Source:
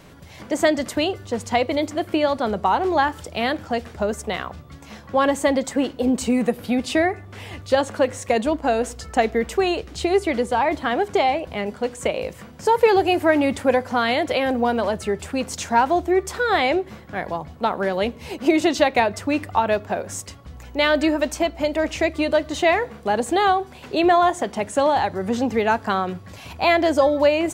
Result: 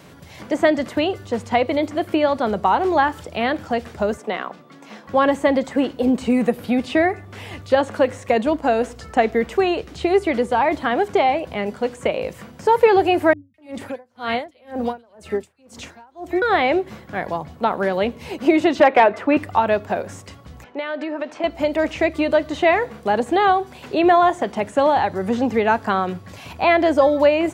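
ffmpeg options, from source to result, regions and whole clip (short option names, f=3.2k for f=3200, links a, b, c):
-filter_complex "[0:a]asettb=1/sr,asplit=3[a][b][c];[a]atrim=end=4.174[d];[b]atrim=start=4.17:end=5.07,asetpts=PTS-STARTPTS,afade=t=in:d=0.004:c=qsin,afade=t=out:st=0.896:d=0.004:c=qsin,highpass=f=200:w=0.5412,highpass=f=200:w=1.3066,aemphasis=mode=reproduction:type=cd[e];[c]atrim=start=5.066[f];[d][e]acrossfade=d=0.004:c1=hsin:c2=qsin[g];[g][f]acrossfade=d=0.004:c1=qsin:c2=hsin,asettb=1/sr,asplit=3[h][i][j];[h]atrim=end=13.334[k];[i]atrim=start=13.33:end=16.42,asetpts=PTS-STARTPTS,afade=t=in:d=0.004:c=qsin,afade=t=out:st=3.086:d=0.004:c=qsin,acrossover=split=170|1900[l][m][n];[n]adelay=210[o];[m]adelay=250[p];[l][p][o]amix=inputs=3:normalize=0,atrim=end_sample=136269,aeval=exprs='val(0)*pow(10,-35*(0.5-0.5*cos(2*PI*2*n/s))/20)':c=same[q];[j]atrim=start=16.416[r];[k][q]acrossfade=d=0.004:c1=hsin:c2=qsin[s];[s][r]acrossfade=d=0.004:c1=qsin:c2=hsin,asettb=1/sr,asplit=3[t][u][v];[t]atrim=end=18.804[w];[u]atrim=start=18.8:end=19.37,asetpts=PTS-STARTPTS,afade=t=in:d=0.004:c=qsin,afade=t=out:st=0.566:d=0.004:c=qsin,acrossover=split=240 3000:gain=0.1 1 0.0891[x][y][z];[x][y][z]amix=inputs=3:normalize=0,volume=13.5dB,asoftclip=hard,volume=-13.5dB,acontrast=35[aa];[v]atrim=start=19.366[ab];[w][aa]acrossfade=d=0.004:c1=hsin:c2=qsin[ac];[ac][ab]acrossfade=d=0.004:c1=qsin:c2=hsin,asettb=1/sr,asplit=3[ad][ae][af];[ad]atrim=end=20.644[ag];[ae]atrim=start=20.64:end=21.44,asetpts=PTS-STARTPTS,afade=t=in:d=0.004:c=qsin,afade=t=out:st=0.796:d=0.004:c=qsin,acompressor=threshold=-22dB:ratio=10:attack=3.2:release=140:knee=1:detection=peak,highpass=310,lowpass=2.7k[ah];[af]atrim=start=21.436[ai];[ag][ah]acrossfade=d=0.004:c1=hsin:c2=qsin[aj];[aj][ai]acrossfade=d=0.004:c1=qsin:c2=hsin,acrossover=split=3300[ak][al];[al]acompressor=threshold=-45dB:ratio=4:attack=1:release=60[am];[ak][am]amix=inputs=2:normalize=0,highpass=81,volume=2dB"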